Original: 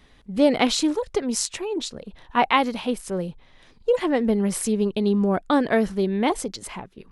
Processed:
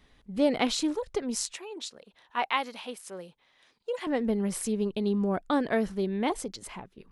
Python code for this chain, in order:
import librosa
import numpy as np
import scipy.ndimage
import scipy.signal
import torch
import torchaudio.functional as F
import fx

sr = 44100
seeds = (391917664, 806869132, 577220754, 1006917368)

y = fx.highpass(x, sr, hz=850.0, slope=6, at=(1.53, 4.07))
y = y * 10.0 ** (-6.5 / 20.0)